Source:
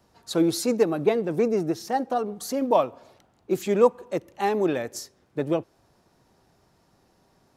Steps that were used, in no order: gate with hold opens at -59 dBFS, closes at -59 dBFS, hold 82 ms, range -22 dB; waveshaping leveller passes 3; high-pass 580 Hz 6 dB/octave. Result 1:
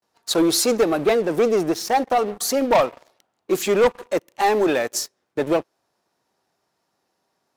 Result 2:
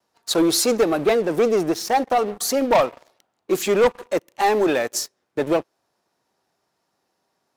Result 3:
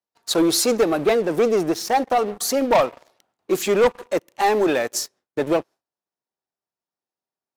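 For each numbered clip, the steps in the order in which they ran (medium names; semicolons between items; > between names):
high-pass > gate with hold > waveshaping leveller; gate with hold > high-pass > waveshaping leveller; high-pass > waveshaping leveller > gate with hold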